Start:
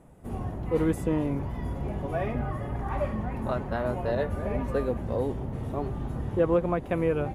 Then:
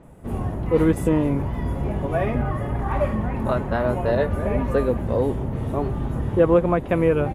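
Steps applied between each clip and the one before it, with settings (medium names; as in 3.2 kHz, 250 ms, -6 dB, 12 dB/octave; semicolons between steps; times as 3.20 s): band-stop 750 Hz, Q 24; bands offset in time lows, highs 30 ms, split 5.4 kHz; trim +7 dB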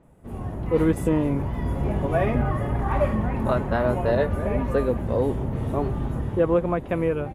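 level rider; trim -8.5 dB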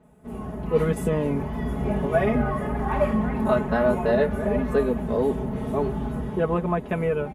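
high-pass 58 Hz; comb 4.7 ms, depth 86%; trim -1.5 dB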